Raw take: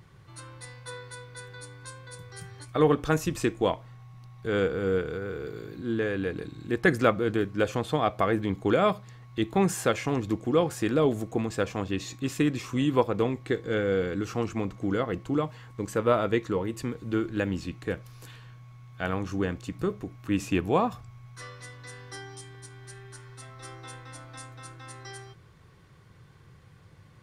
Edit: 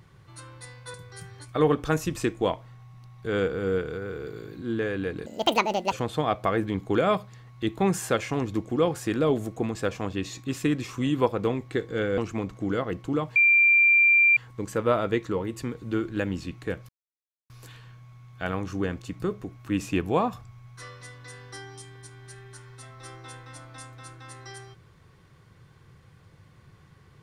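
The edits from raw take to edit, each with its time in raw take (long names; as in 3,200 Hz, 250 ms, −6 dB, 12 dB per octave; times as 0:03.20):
0:00.94–0:02.14: remove
0:06.46–0:07.67: play speed 184%
0:13.93–0:14.39: remove
0:15.57: insert tone 2,370 Hz −15 dBFS 1.01 s
0:18.09: splice in silence 0.61 s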